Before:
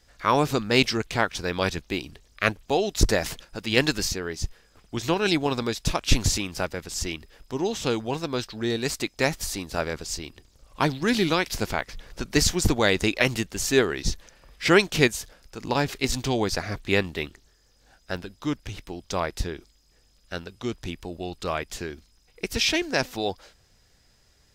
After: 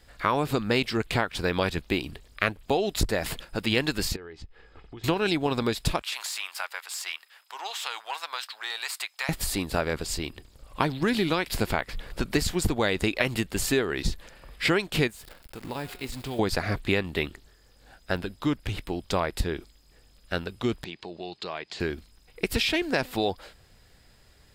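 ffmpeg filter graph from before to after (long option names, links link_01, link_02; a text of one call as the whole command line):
ffmpeg -i in.wav -filter_complex "[0:a]asettb=1/sr,asplit=3[link_01][link_02][link_03];[link_01]atrim=end=4.164[link_04];[link_02]atrim=start=4.16:end=5.04,asetpts=PTS-STARTPTS,afade=type=in:duration=0.004:curve=qsin,afade=type=out:start_time=0.876:duration=0.004:curve=qsin,lowpass=3400,aecho=1:1:2.4:0.38,atrim=end_sample=38808,acompressor=threshold=-45dB:ratio=6:attack=3.2:release=140:knee=1:detection=peak[link_05];[link_03]atrim=start=5.036[link_06];[link_04][link_05]acrossfade=duration=0.004:curve1=hsin:curve2=qsin[link_07];[link_07][link_06]acrossfade=duration=0.004:curve1=qsin:curve2=hsin,asettb=1/sr,asplit=3[link_08][link_09][link_10];[link_08]atrim=end=6.024[link_11];[link_09]atrim=start=6.02:end=9.29,asetpts=PTS-STARTPTS,afade=type=in:duration=0.004:curve=qsin,afade=type=out:start_time=3.266:duration=0.004:curve=qsin,aeval=exprs='if(lt(val(0),0),0.708*val(0),val(0))':channel_layout=same,highpass=frequency=890:width=0.5412,highpass=frequency=890:width=1.3066,acompressor=threshold=-31dB:ratio=4:attack=3.2:release=140:knee=1:detection=peak[link_12];[link_10]atrim=start=9.286[link_13];[link_11][link_12]acrossfade=duration=0.004:curve1=hsin:curve2=qsin[link_14];[link_14][link_13]acrossfade=duration=0.004:curve1=qsin:curve2=hsin,asettb=1/sr,asplit=3[link_15][link_16][link_17];[link_15]atrim=end=15.104[link_18];[link_16]atrim=start=15.1:end=16.39,asetpts=PTS-STARTPTS,afade=type=in:duration=0.004:curve=qsin,afade=type=out:start_time=1.286:duration=0.004:curve=qsin,bandreject=frequency=180.5:width_type=h:width=4,bandreject=frequency=361:width_type=h:width=4,bandreject=frequency=541.5:width_type=h:width=4,bandreject=frequency=722:width_type=h:width=4,bandreject=frequency=902.5:width_type=h:width=4,bandreject=frequency=1083:width_type=h:width=4,bandreject=frequency=1263.5:width_type=h:width=4,bandreject=frequency=1444:width_type=h:width=4,bandreject=frequency=1624.5:width_type=h:width=4,bandreject=frequency=1805:width_type=h:width=4,bandreject=frequency=1985.5:width_type=h:width=4,bandreject=frequency=2166:width_type=h:width=4,bandreject=frequency=2346.5:width_type=h:width=4,bandreject=frequency=2527:width_type=h:width=4,bandreject=frequency=2707.5:width_type=h:width=4,bandreject=frequency=2888:width_type=h:width=4,bandreject=frequency=3068.5:width_type=h:width=4,bandreject=frequency=3249:width_type=h:width=4,bandreject=frequency=3429.5:width_type=h:width=4,bandreject=frequency=3610:width_type=h:width=4,bandreject=frequency=3790.5:width_type=h:width=4,bandreject=frequency=3971:width_type=h:width=4,bandreject=frequency=4151.5:width_type=h:width=4,bandreject=frequency=4332:width_type=h:width=4,bandreject=frequency=4512.5:width_type=h:width=4,bandreject=frequency=4693:width_type=h:width=4,bandreject=frequency=4873.5:width_type=h:width=4,bandreject=frequency=5054:width_type=h:width=4,bandreject=frequency=5234.5:width_type=h:width=4,bandreject=frequency=5415:width_type=h:width=4,acompressor=threshold=-47dB:ratio=2:attack=3.2:release=140:knee=1:detection=peak,acrusher=bits=9:dc=4:mix=0:aa=0.000001[link_19];[link_17]atrim=start=16.386[link_20];[link_18][link_19]acrossfade=duration=0.004:curve1=hsin:curve2=qsin[link_21];[link_21][link_20]acrossfade=duration=0.004:curve1=qsin:curve2=hsin,asettb=1/sr,asplit=3[link_22][link_23][link_24];[link_22]atrim=end=20.844[link_25];[link_23]atrim=start=20.84:end=21.8,asetpts=PTS-STARTPTS,afade=type=in:duration=0.004:curve=qsin,afade=type=out:start_time=0.956:duration=0.004:curve=qsin,acompressor=threshold=-37dB:ratio=2.5:attack=3.2:release=140:knee=1:detection=peak,highpass=220,equalizer=frequency=260:width_type=q:width=4:gain=-9,equalizer=frequency=530:width_type=q:width=4:gain=-5,equalizer=frequency=1300:width_type=q:width=4:gain=-5,equalizer=frequency=4300:width_type=q:width=4:gain=6,lowpass=frequency=6300:width=0.5412,lowpass=frequency=6300:width=1.3066[link_26];[link_24]atrim=start=21.796[link_27];[link_25][link_26]acrossfade=duration=0.004:curve1=hsin:curve2=qsin[link_28];[link_28][link_27]acrossfade=duration=0.004:curve1=qsin:curve2=hsin,acompressor=threshold=-26dB:ratio=6,equalizer=frequency=6000:width=3.2:gain=-12,volume=5dB" out.wav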